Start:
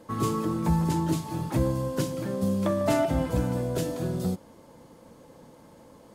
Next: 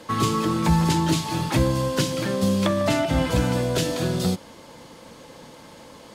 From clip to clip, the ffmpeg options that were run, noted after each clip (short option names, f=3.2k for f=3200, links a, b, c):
-filter_complex "[0:a]equalizer=f=3.4k:w=0.44:g=12.5,acrossover=split=290[a][b];[b]acompressor=threshold=-26dB:ratio=6[c];[a][c]amix=inputs=2:normalize=0,volume=4.5dB"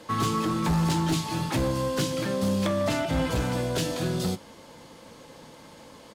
-filter_complex "[0:a]volume=17.5dB,asoftclip=hard,volume=-17.5dB,asplit=2[a][b];[b]adelay=19,volume=-13dB[c];[a][c]amix=inputs=2:normalize=0,volume=-3.5dB"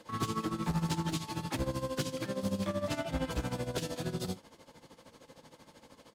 -af "tremolo=f=13:d=0.78,volume=-5dB"